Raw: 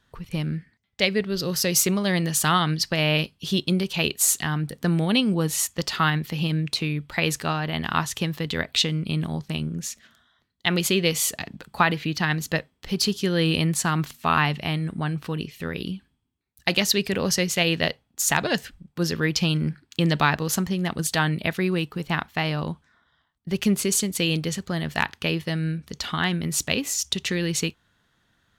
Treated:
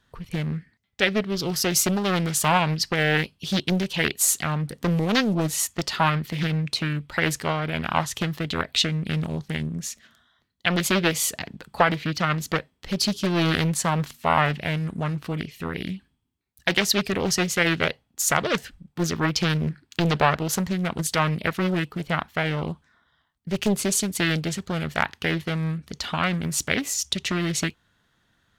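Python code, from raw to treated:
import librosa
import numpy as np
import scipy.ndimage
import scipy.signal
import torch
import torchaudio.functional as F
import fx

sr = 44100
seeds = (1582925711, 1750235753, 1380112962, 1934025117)

y = fx.doppler_dist(x, sr, depth_ms=0.82)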